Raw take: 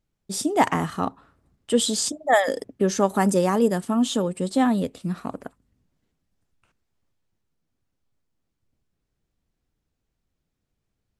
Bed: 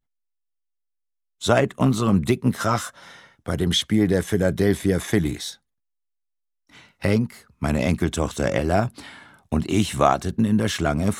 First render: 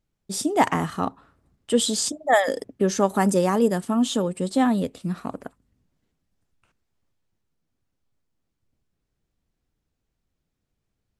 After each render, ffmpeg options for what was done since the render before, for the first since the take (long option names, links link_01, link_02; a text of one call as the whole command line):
ffmpeg -i in.wav -af anull out.wav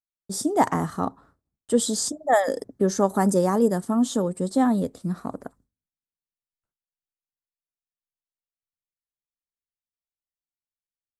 ffmpeg -i in.wav -af "agate=range=-33dB:threshold=-50dB:ratio=3:detection=peak,equalizer=frequency=2700:width=1.7:gain=-14.5" out.wav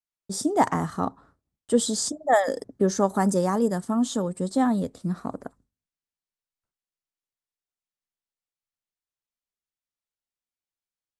ffmpeg -i in.wav -af "lowpass=9700,adynamicequalizer=threshold=0.0251:dfrequency=380:dqfactor=0.8:tfrequency=380:tqfactor=0.8:attack=5:release=100:ratio=0.375:range=2.5:mode=cutabove:tftype=bell" out.wav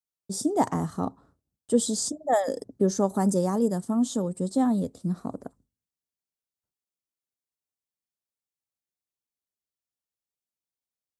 ffmpeg -i in.wav -af "highpass=51,equalizer=frequency=1800:width=0.64:gain=-9.5" out.wav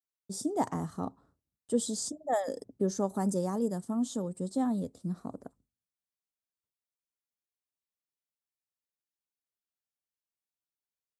ffmpeg -i in.wav -af "volume=-6.5dB" out.wav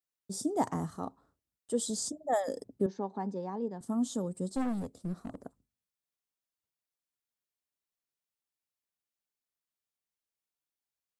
ffmpeg -i in.wav -filter_complex "[0:a]asettb=1/sr,asplit=3[link_01][link_02][link_03];[link_01]atrim=end=0.974[link_04];[link_02]atrim=start=0.97:end=1.9,asetpts=PTS-STARTPTS,afade=type=in:duration=0.004:curve=qsin,afade=type=out:start_time=0.926:duration=0.004:curve=qsin,equalizer=frequency=130:width_type=o:width=2.5:gain=-6.5[link_05];[link_03]atrim=start=1.896[link_06];[link_04][link_05]acrossfade=duration=0.004:curve1=hsin:curve2=qsin[link_07];[link_07][link_06]acrossfade=duration=0.004:curve1=qsin:curve2=hsin,asettb=1/sr,asplit=3[link_08][link_09][link_10];[link_08]atrim=end=2.864[link_11];[link_09]atrim=start=2.86:end=3.81,asetpts=PTS-STARTPTS,afade=type=in:duration=0.004:curve=qsin,afade=type=out:start_time=0.946:duration=0.004:curve=qsin,highpass=280,equalizer=frequency=330:width_type=q:width=4:gain=-6,equalizer=frequency=600:width_type=q:width=4:gain=-10,equalizer=frequency=860:width_type=q:width=4:gain=3,equalizer=frequency=1300:width_type=q:width=4:gain=-10,equalizer=frequency=1900:width_type=q:width=4:gain=-3,equalizer=frequency=3200:width_type=q:width=4:gain=-6,lowpass=frequency=3500:width=0.5412,lowpass=frequency=3500:width=1.3066[link_12];[link_10]atrim=start=3.806[link_13];[link_11][link_12]acrossfade=duration=0.004:curve1=hsin:curve2=qsin[link_14];[link_14][link_13]acrossfade=duration=0.004:curve1=qsin:curve2=hsin,asettb=1/sr,asplit=3[link_15][link_16][link_17];[link_15]atrim=end=4.484[link_18];[link_16]atrim=start=4.48:end=5.42,asetpts=PTS-STARTPTS,afade=type=in:duration=0.004:curve=qsin,afade=type=out:start_time=0.936:duration=0.004:curve=qsin,aeval=exprs='clip(val(0),-1,0.0168)':channel_layout=same[link_19];[link_17]atrim=start=5.416[link_20];[link_18][link_19]acrossfade=duration=0.004:curve1=hsin:curve2=qsin[link_21];[link_21][link_20]acrossfade=duration=0.004:curve1=qsin:curve2=hsin" out.wav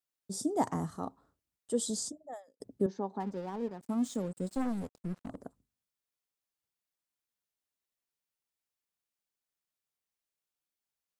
ffmpeg -i in.wav -filter_complex "[0:a]asettb=1/sr,asplit=3[link_01][link_02][link_03];[link_01]atrim=end=3.204[link_04];[link_02]atrim=start=3.2:end=5.28,asetpts=PTS-STARTPTS,afade=type=in:duration=0.004:curve=qsin,afade=type=out:start_time=2.076:duration=0.004:curve=qsin,aeval=exprs='sgn(val(0))*max(abs(val(0))-0.00299,0)':channel_layout=same[link_05];[link_03]atrim=start=5.276[link_06];[link_04][link_05]acrossfade=duration=0.004:curve1=hsin:curve2=qsin[link_07];[link_07][link_06]acrossfade=duration=0.004:curve1=qsin:curve2=hsin,asplit=2[link_08][link_09];[link_08]atrim=end=2.6,asetpts=PTS-STARTPTS,afade=type=out:start_time=1.97:duration=0.63:curve=qua[link_10];[link_09]atrim=start=2.6,asetpts=PTS-STARTPTS,afade=type=in:duration=0.004:curve=hsin[link_11];[link_10][link_11]concat=n=2:v=0:a=1" out.wav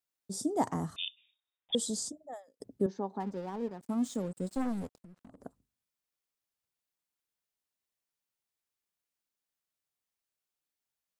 ffmpeg -i in.wav -filter_complex "[0:a]asettb=1/sr,asplit=3[link_01][link_02][link_03];[link_01]atrim=end=0.964[link_04];[link_02]atrim=start=0.96:end=1.75,asetpts=PTS-STARTPTS,afade=type=in:duration=0.004:curve=qsin,afade=type=out:start_time=0.786:duration=0.004:curve=qsin,lowpass=frequency=3200:width_type=q:width=0.5098,lowpass=frequency=3200:width_type=q:width=0.6013,lowpass=frequency=3200:width_type=q:width=0.9,lowpass=frequency=3200:width_type=q:width=2.563,afreqshift=-3800[link_05];[link_03]atrim=start=1.746[link_06];[link_04][link_05]acrossfade=duration=0.004:curve1=hsin:curve2=qsin[link_07];[link_07][link_06]acrossfade=duration=0.004:curve1=qsin:curve2=hsin,asettb=1/sr,asplit=3[link_08][link_09][link_10];[link_08]atrim=end=4.964[link_11];[link_09]atrim=start=4.96:end=5.43,asetpts=PTS-STARTPTS,afade=type=in:duration=0.004:curve=qsin,afade=type=out:start_time=0.466:duration=0.004:curve=qsin,acompressor=threshold=-49dB:ratio=16:attack=3.2:release=140:knee=1:detection=peak[link_12];[link_10]atrim=start=5.426[link_13];[link_11][link_12]acrossfade=duration=0.004:curve1=hsin:curve2=qsin[link_14];[link_14][link_13]acrossfade=duration=0.004:curve1=qsin:curve2=hsin" out.wav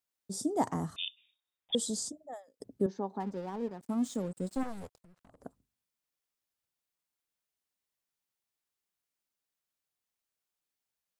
ffmpeg -i in.wav -filter_complex "[0:a]asettb=1/sr,asplit=3[link_01][link_02][link_03];[link_01]atrim=end=4.634[link_04];[link_02]atrim=start=4.63:end=5.43,asetpts=PTS-STARTPTS,afade=type=in:duration=0.004:curve=qsin,afade=type=out:start_time=0.796:duration=0.004:curve=qsin,equalizer=frequency=240:width=1.3:gain=-12[link_05];[link_03]atrim=start=5.426[link_06];[link_04][link_05]acrossfade=duration=0.004:curve1=hsin:curve2=qsin[link_07];[link_07][link_06]acrossfade=duration=0.004:curve1=qsin:curve2=hsin" out.wav